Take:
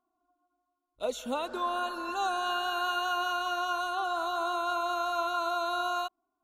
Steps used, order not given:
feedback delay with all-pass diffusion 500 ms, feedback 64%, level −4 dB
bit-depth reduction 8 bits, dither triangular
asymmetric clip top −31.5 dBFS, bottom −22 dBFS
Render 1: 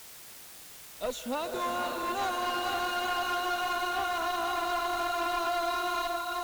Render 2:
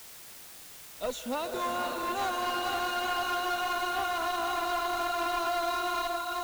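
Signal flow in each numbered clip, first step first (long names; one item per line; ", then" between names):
feedback delay with all-pass diffusion, then bit-depth reduction, then asymmetric clip
feedback delay with all-pass diffusion, then asymmetric clip, then bit-depth reduction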